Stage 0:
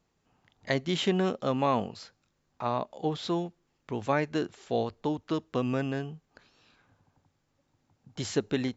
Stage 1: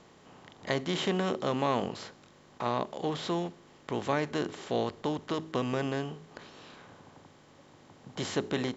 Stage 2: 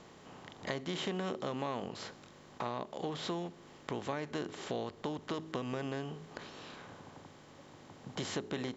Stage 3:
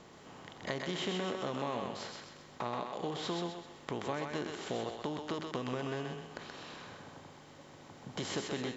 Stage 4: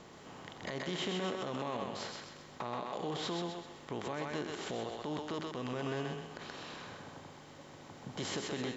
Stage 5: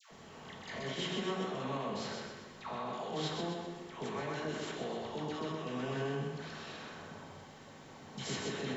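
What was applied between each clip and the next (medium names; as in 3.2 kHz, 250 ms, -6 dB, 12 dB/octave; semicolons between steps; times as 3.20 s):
spectral levelling over time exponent 0.6; de-hum 53.25 Hz, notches 8; trim -4.5 dB
compression 3:1, threshold -38 dBFS, peak gain reduction 11.5 dB; trim +1.5 dB
thinning echo 128 ms, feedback 45%, high-pass 540 Hz, level -3 dB
peak limiter -29 dBFS, peak gain reduction 9.5 dB; trim +1.5 dB
phase dispersion lows, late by 115 ms, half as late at 990 Hz; reverberation RT60 0.95 s, pre-delay 4 ms, DRR 0.5 dB; trim -2.5 dB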